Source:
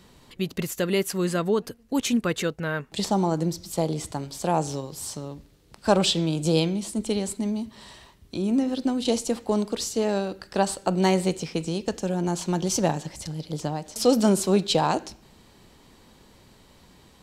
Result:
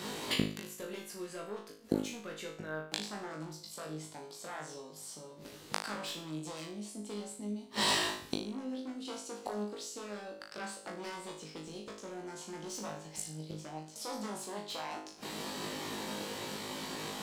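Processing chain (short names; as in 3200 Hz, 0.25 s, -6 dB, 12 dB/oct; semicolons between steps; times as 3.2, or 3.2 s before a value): one-sided fold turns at -19.5 dBFS; HPF 220 Hz 12 dB/oct; high shelf 12000 Hz -4 dB; in parallel at +2 dB: compressor, threshold -32 dBFS, peak gain reduction 13 dB; on the sum: sample leveller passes 1; flipped gate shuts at -20 dBFS, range -29 dB; on a send: flutter echo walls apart 3.3 m, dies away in 0.46 s; on the sum: gain +4.5 dB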